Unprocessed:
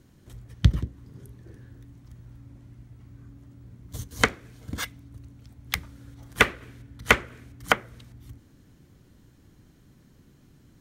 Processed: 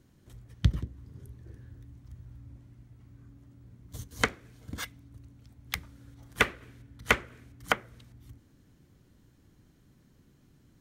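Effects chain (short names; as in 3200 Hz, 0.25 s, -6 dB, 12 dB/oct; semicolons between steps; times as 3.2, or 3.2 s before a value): 0.89–2.63 bell 76 Hz +9 dB 0.95 oct; gain -5.5 dB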